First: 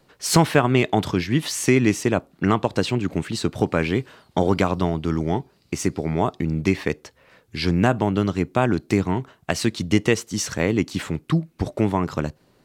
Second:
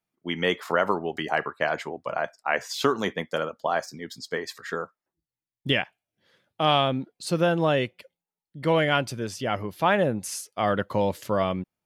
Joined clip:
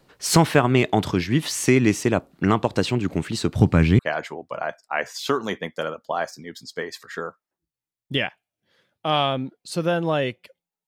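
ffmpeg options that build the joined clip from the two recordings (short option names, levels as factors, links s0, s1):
-filter_complex "[0:a]asplit=3[s0][s1][s2];[s0]afade=t=out:st=3.55:d=0.02[s3];[s1]asubboost=boost=5:cutoff=210,afade=t=in:st=3.55:d=0.02,afade=t=out:st=3.99:d=0.02[s4];[s2]afade=t=in:st=3.99:d=0.02[s5];[s3][s4][s5]amix=inputs=3:normalize=0,apad=whole_dur=10.87,atrim=end=10.87,atrim=end=3.992[s6];[1:a]atrim=start=1.538:end=8.42[s7];[s6][s7]acrossfade=d=0.004:c1=hsin:c2=hsin"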